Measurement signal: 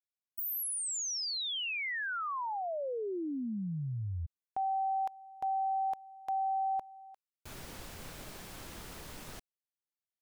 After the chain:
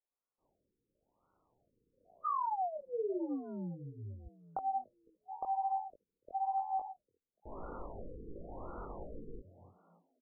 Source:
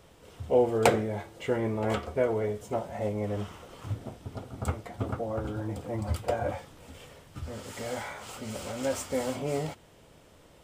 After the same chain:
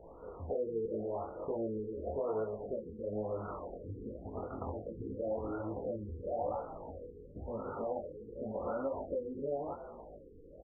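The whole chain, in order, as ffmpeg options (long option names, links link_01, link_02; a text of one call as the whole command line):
ffmpeg -i in.wav -filter_complex "[0:a]acrossover=split=1700[link_01][link_02];[link_01]acompressor=threshold=-39dB:ratio=20:attack=12:release=62:knee=6:detection=peak[link_03];[link_03][link_02]amix=inputs=2:normalize=0,equalizer=frequency=125:width_type=o:width=1:gain=-12,equalizer=frequency=500:width_type=o:width=1:gain=4,equalizer=frequency=2000:width_type=o:width=1:gain=8,equalizer=frequency=8000:width_type=o:width=1:gain=-4,asplit=2[link_04][link_05];[link_05]asplit=4[link_06][link_07][link_08][link_09];[link_06]adelay=291,afreqshift=81,volume=-15dB[link_10];[link_07]adelay=582,afreqshift=162,volume=-22.7dB[link_11];[link_08]adelay=873,afreqshift=243,volume=-30.5dB[link_12];[link_09]adelay=1164,afreqshift=324,volume=-38.2dB[link_13];[link_10][link_11][link_12][link_13]amix=inputs=4:normalize=0[link_14];[link_04][link_14]amix=inputs=2:normalize=0,aresample=32000,aresample=44100,flanger=delay=17.5:depth=5.3:speed=1.2,lowshelf=frequency=90:gain=2.5,acrusher=bits=8:mode=log:mix=0:aa=0.000001,asoftclip=type=tanh:threshold=-27dB,afftfilt=real='re*lt(b*sr/1024,490*pow(1500/490,0.5+0.5*sin(2*PI*0.94*pts/sr)))':imag='im*lt(b*sr/1024,490*pow(1500/490,0.5+0.5*sin(2*PI*0.94*pts/sr)))':win_size=1024:overlap=0.75,volume=6dB" out.wav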